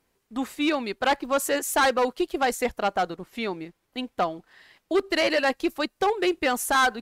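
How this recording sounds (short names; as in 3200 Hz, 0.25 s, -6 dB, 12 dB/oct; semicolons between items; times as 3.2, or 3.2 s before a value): noise floor -74 dBFS; spectral tilt -2.5 dB/oct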